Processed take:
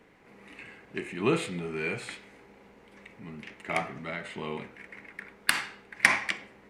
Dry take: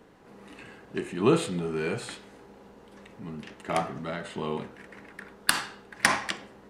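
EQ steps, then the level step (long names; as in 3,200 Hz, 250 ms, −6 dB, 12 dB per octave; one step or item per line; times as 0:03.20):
parametric band 2,200 Hz +12.5 dB 0.51 octaves
−4.5 dB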